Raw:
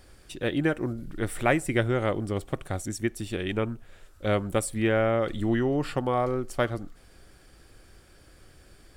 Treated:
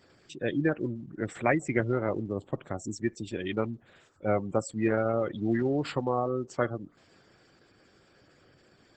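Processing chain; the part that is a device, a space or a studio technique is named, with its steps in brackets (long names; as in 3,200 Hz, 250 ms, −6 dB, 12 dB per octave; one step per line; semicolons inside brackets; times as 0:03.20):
0:03.41–0:04.58: dynamic equaliser 770 Hz, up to +4 dB, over −39 dBFS, Q 2.7
noise-suppressed video call (high-pass filter 110 Hz 24 dB per octave; gate on every frequency bin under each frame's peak −20 dB strong; level −1.5 dB; Opus 12 kbit/s 48,000 Hz)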